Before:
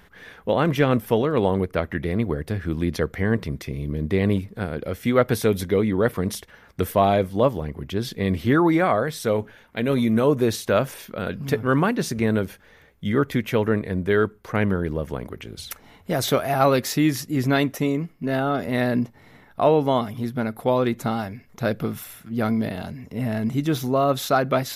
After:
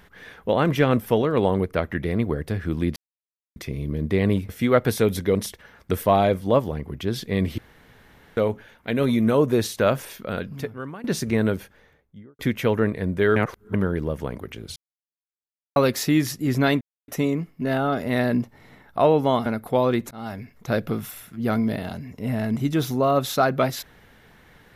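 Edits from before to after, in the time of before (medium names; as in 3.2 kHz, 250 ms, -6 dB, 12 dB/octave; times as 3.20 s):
2.96–3.56 s: mute
4.49–4.93 s: delete
5.79–6.24 s: delete
8.47–9.26 s: room tone
11.24–11.93 s: fade out quadratic, to -18.5 dB
12.43–13.28 s: studio fade out
14.25–14.63 s: reverse
15.65–16.65 s: mute
17.70 s: insert silence 0.27 s
20.08–20.39 s: delete
21.04–21.33 s: fade in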